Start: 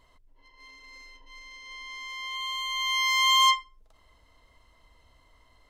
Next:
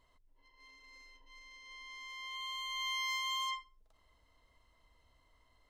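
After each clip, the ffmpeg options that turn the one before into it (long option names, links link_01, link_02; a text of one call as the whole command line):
ffmpeg -i in.wav -af "alimiter=limit=-21dB:level=0:latency=1:release=43,volume=-9dB" out.wav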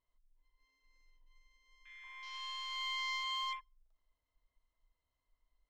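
ffmpeg -i in.wav -af "aeval=exprs='0.0335*(cos(1*acos(clip(val(0)/0.0335,-1,1)))-cos(1*PI/2))+0.00168*(cos(8*acos(clip(val(0)/0.0335,-1,1)))-cos(8*PI/2))':channel_layout=same,afwtdn=0.00447,volume=-1.5dB" out.wav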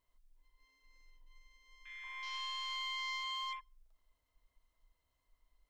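ffmpeg -i in.wav -af "acompressor=threshold=-43dB:ratio=6,volume=5dB" out.wav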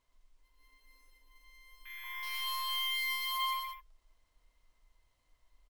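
ffmpeg -i in.wav -filter_complex "[0:a]acrusher=samples=3:mix=1:aa=0.000001,asplit=2[link_01][link_02];[link_02]aecho=0:1:119.5|204.1:0.631|0.355[link_03];[link_01][link_03]amix=inputs=2:normalize=0,volume=3.5dB" out.wav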